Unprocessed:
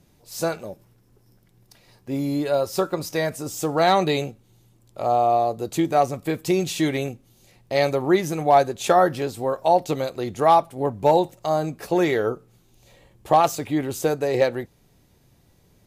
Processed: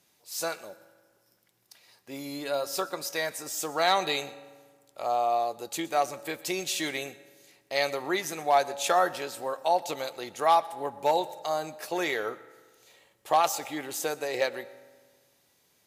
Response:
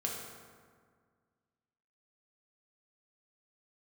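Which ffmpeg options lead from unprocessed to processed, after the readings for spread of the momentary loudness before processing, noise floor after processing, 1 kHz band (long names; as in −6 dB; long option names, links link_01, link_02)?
10 LU, −68 dBFS, −6.0 dB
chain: -filter_complex "[0:a]highpass=frequency=1400:poles=1,asplit=2[link_01][link_02];[1:a]atrim=start_sample=2205,asetrate=52920,aresample=44100,adelay=121[link_03];[link_02][link_03]afir=irnorm=-1:irlink=0,volume=-19dB[link_04];[link_01][link_04]amix=inputs=2:normalize=0"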